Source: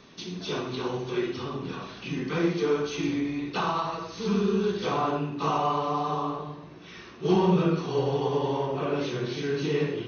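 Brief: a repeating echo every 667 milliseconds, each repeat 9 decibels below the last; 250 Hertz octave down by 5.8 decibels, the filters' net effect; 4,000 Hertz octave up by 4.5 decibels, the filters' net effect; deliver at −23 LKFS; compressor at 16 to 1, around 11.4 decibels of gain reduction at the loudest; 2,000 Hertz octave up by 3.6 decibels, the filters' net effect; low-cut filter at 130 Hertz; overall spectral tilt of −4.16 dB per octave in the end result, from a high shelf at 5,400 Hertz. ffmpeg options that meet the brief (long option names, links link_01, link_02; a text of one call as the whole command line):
ffmpeg -i in.wav -af "highpass=130,equalizer=frequency=250:width_type=o:gain=-8.5,equalizer=frequency=2000:width_type=o:gain=3.5,equalizer=frequency=4000:width_type=o:gain=3,highshelf=frequency=5400:gain=4,acompressor=threshold=-33dB:ratio=16,aecho=1:1:667|1334|2001|2668:0.355|0.124|0.0435|0.0152,volume=13.5dB" out.wav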